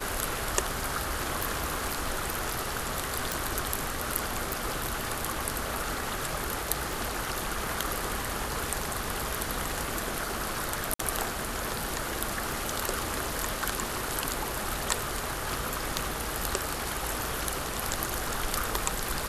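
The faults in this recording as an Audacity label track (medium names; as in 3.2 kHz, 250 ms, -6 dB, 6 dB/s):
1.400000	2.620000	clipped -22 dBFS
3.320000	3.320000	pop
4.530000	4.530000	pop
6.930000	6.930000	pop
10.940000	10.990000	dropout 54 ms
12.520000	12.520000	pop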